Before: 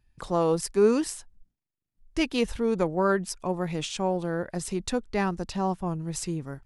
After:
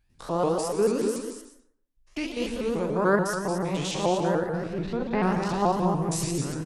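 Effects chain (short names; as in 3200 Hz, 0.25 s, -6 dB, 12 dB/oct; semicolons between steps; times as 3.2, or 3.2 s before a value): stepped spectrum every 0.1 s; low shelf 400 Hz -4.5 dB; vocal rider 2 s; 4.39–5.23 air absorption 320 m; tapped delay 46/232 ms -9.5/-6.5 dB; plate-style reverb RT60 0.63 s, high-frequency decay 0.5×, pre-delay 0.105 s, DRR 7.5 dB; shaped vibrato saw up 6.9 Hz, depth 160 cents; gain +2.5 dB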